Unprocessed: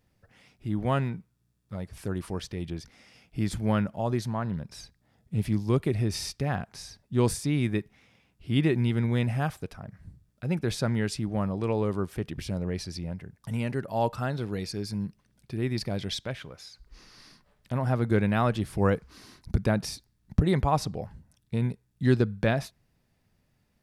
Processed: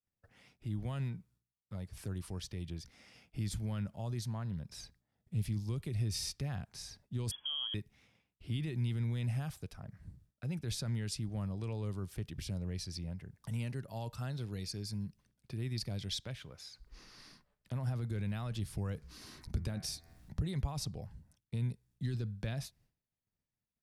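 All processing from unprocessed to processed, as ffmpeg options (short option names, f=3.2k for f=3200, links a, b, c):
-filter_complex "[0:a]asettb=1/sr,asplit=3[a][b][c];[a]atrim=end=7.314[d];[b]atrim=start=7.31:end=7.74,asetpts=PTS-STARTPTS,afade=t=in:d=0.004:c=qsin,afade=t=out:st=0.426:d=0.004:c=qsin,acompressor=threshold=-28dB:ratio=6:attack=3.2:release=140:knee=1:detection=peak,lowpass=f=2.9k:t=q:w=0.5098,lowpass=f=2.9k:t=q:w=0.6013,lowpass=f=2.9k:t=q:w=0.9,lowpass=f=2.9k:t=q:w=2.563,afreqshift=-3400[e];[c]atrim=start=7.736[f];[d][e]acrossfade=d=0.004:c1=hsin:c2=qsin[g];[g][f]acrossfade=d=0.004:c1=qsin:c2=hsin,asettb=1/sr,asplit=3[h][i][j];[h]atrim=end=18.954[k];[i]atrim=start=18.95:end=20.4,asetpts=PTS-STARTPTS,afade=t=in:d=0.004:c=qsin,afade=t=out:st=1.446:d=0.004:c=qsin,asplit=2[l][m];[m]adelay=13,volume=-13dB[n];[l][n]amix=inputs=2:normalize=0,atrim=end_sample=63945,bandreject=f=83.39:t=h:w=4,bandreject=f=166.78:t=h:w=4,bandreject=f=250.17:t=h:w=4,bandreject=f=333.56:t=h:w=4,bandreject=f=416.95:t=h:w=4,bandreject=f=500.34:t=h:w=4,bandreject=f=583.73:t=h:w=4,bandreject=f=667.12:t=h:w=4,bandreject=f=750.51:t=h:w=4,bandreject=f=833.9:t=h:w=4,bandreject=f=917.29:t=h:w=4,bandreject=f=1.00068k:t=h:w=4,bandreject=f=1.08407k:t=h:w=4,bandreject=f=1.16746k:t=h:w=4,bandreject=f=1.25085k:t=h:w=4,bandreject=f=1.33424k:t=h:w=4,bandreject=f=1.41763k:t=h:w=4,bandreject=f=1.50102k:t=h:w=4,bandreject=f=1.58441k:t=h:w=4,bandreject=f=1.6678k:t=h:w=4,bandreject=f=1.75119k:t=h:w=4,bandreject=f=1.83458k:t=h:w=4,bandreject=f=1.91797k:t=h:w=4,bandreject=f=2.00136k:t=h:w=4,bandreject=f=2.08475k:t=h:w=4,bandreject=f=2.16814k:t=h:w=4,bandreject=f=2.25153k:t=h:w=4,bandreject=f=2.33492k:t=h:w=4,bandreject=f=2.41831k:t=h:w=4,bandreject=f=2.5017k:t=h:w=4,acompressor=mode=upward:threshold=-40dB:ratio=2.5:attack=3.2:release=140:knee=2.83:detection=peak[o];[j]atrim=start=20.396[p];[k][o]acrossfade=d=0.004:c1=hsin:c2=qsin[q];[q][p]acrossfade=d=0.004:c1=qsin:c2=hsin,agate=range=-33dB:threshold=-56dB:ratio=3:detection=peak,alimiter=limit=-19.5dB:level=0:latency=1:release=17,acrossover=split=150|3000[r][s][t];[s]acompressor=threshold=-50dB:ratio=2[u];[r][u][t]amix=inputs=3:normalize=0,volume=-3.5dB"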